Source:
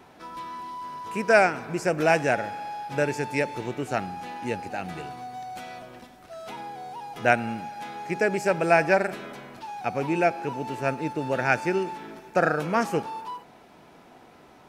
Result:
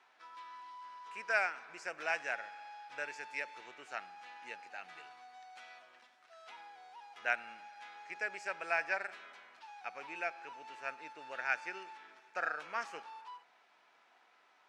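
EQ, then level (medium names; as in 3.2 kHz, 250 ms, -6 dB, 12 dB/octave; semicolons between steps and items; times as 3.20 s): Butterworth band-pass 3.4 kHz, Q 0.53; tilt EQ -3 dB/octave; -5.5 dB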